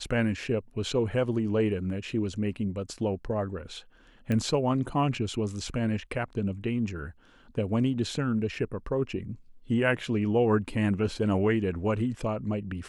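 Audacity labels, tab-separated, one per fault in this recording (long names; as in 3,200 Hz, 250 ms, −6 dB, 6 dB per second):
4.320000	4.320000	click −18 dBFS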